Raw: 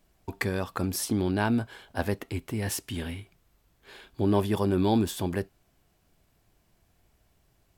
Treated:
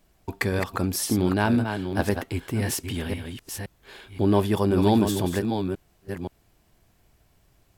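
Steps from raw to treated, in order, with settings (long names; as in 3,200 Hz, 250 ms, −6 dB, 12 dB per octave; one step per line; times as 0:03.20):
delay that plays each chunk backwards 523 ms, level −6.5 dB
level +3.5 dB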